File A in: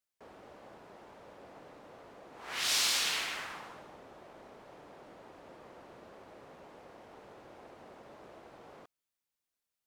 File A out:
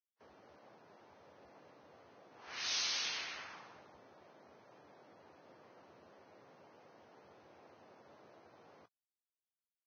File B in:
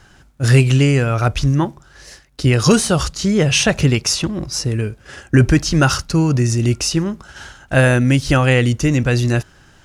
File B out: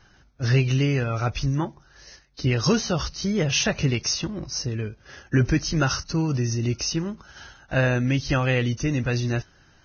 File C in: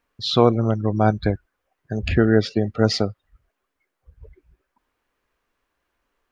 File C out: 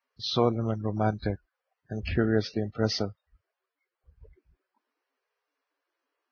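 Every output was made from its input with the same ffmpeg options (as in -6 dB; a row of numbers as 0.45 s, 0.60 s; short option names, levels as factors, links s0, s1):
-af "volume=0.376" -ar 16000 -c:a libvorbis -b:a 16k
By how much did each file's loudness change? -7.0 LU, -8.0 LU, -8.5 LU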